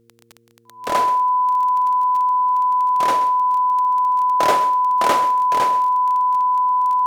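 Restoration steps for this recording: de-click; de-hum 116 Hz, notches 4; notch 1000 Hz, Q 30; inverse comb 0.13 s -14.5 dB

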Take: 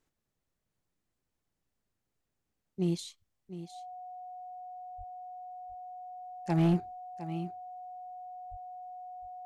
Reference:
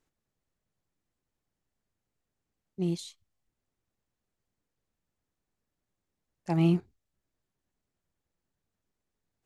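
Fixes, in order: clip repair -21 dBFS; notch 730 Hz, Q 30; de-plosive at 4.97/8.5; inverse comb 0.708 s -13 dB

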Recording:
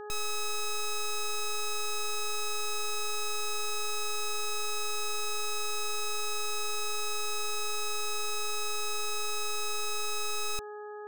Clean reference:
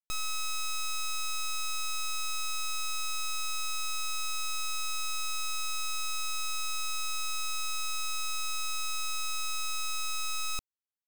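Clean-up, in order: de-hum 418.7 Hz, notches 4

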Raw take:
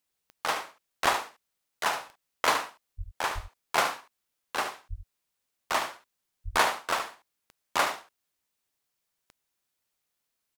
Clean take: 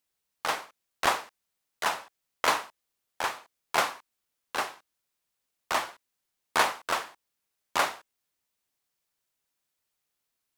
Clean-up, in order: de-click; de-plosive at 2.97/3.34/4.89/6.44; inverse comb 73 ms -9 dB

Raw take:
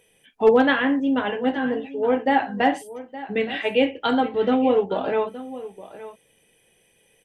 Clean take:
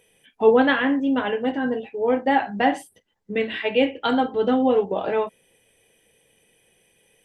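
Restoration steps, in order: clip repair -7.5 dBFS; inverse comb 0.868 s -15.5 dB

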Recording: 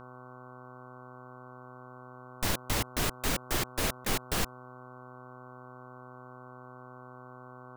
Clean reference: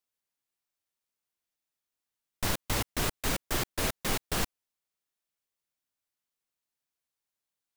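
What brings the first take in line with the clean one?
de-hum 126 Hz, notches 12; notch 1100 Hz, Q 30; interpolate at 4.05, 10 ms

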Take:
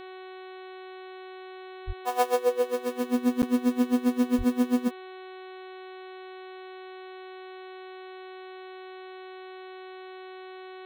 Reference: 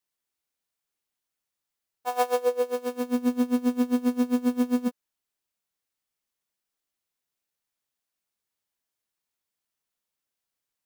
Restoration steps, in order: de-hum 373.5 Hz, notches 11; de-plosive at 1.86/4.37; interpolate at 3.42, 9.4 ms

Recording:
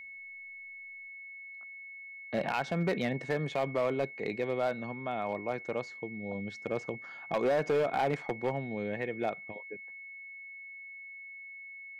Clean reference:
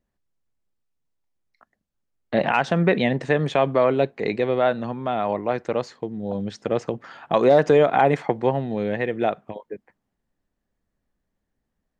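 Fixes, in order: clip repair -23.5 dBFS; notch 2200 Hz, Q 30; gain correction +10.5 dB, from 1.08

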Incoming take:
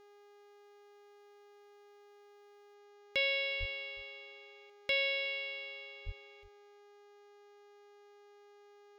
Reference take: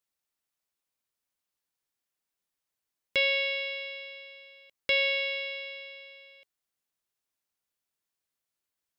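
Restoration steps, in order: de-hum 409.4 Hz, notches 17; 3.59–3.71 HPF 140 Hz 24 dB/oct; 6.05–6.17 HPF 140 Hz 24 dB/oct; inverse comb 0.364 s -21 dB; gain 0 dB, from 2.74 s +6 dB

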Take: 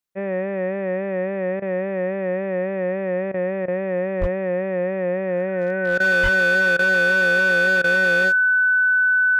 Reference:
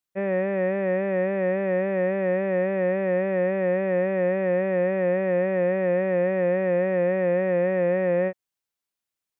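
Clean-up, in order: clip repair -14 dBFS; notch 1500 Hz, Q 30; de-plosive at 4.2/6.22; interpolate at 1.6/3.32/3.66/5.98/6.77/7.82, 19 ms

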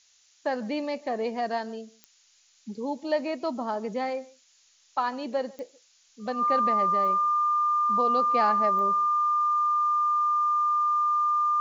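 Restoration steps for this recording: de-click; notch 1200 Hz, Q 30; noise print and reduce 10 dB; inverse comb 0.145 s -23 dB

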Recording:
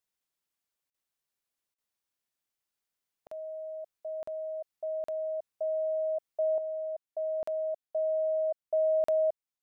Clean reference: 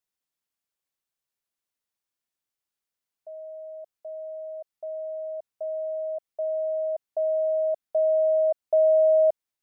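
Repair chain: interpolate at 0.9/1.74/3.27/4.23/5.04/7.43/9.04, 44 ms; gain 0 dB, from 6.58 s +7.5 dB

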